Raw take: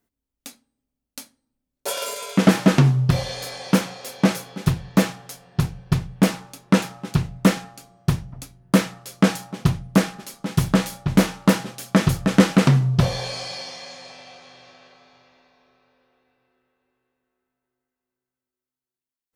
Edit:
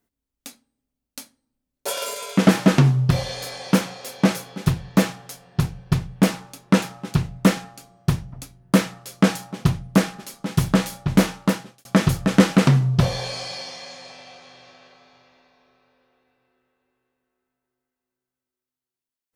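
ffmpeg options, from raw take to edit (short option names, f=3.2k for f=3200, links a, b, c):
-filter_complex "[0:a]asplit=2[a][b];[a]atrim=end=11.85,asetpts=PTS-STARTPTS,afade=t=out:st=11.29:d=0.56[c];[b]atrim=start=11.85,asetpts=PTS-STARTPTS,afade=t=in:d=0.004:c=hsin[d];[c][d]concat=n=2:v=0:a=1"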